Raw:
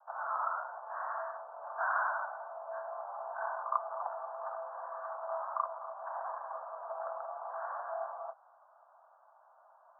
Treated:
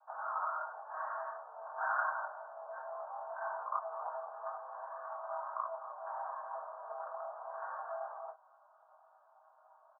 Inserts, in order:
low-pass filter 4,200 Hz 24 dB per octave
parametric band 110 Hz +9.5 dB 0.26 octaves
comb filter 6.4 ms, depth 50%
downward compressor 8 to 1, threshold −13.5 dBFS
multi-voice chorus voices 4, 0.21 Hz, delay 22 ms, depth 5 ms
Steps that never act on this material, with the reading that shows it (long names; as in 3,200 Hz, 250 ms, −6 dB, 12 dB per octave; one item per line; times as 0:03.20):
low-pass filter 4,200 Hz: nothing at its input above 1,700 Hz
parametric band 110 Hz: nothing at its input below 510 Hz
downward compressor, threshold −13.5 dBFS: peak of its input −15.5 dBFS